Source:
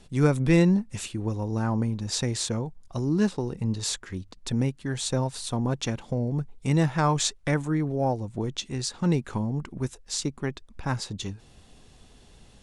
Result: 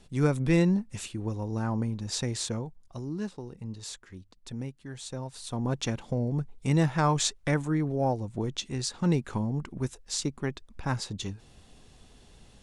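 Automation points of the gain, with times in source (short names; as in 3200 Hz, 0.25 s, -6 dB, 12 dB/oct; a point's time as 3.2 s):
2.52 s -3.5 dB
3.22 s -11 dB
5.19 s -11 dB
5.75 s -1.5 dB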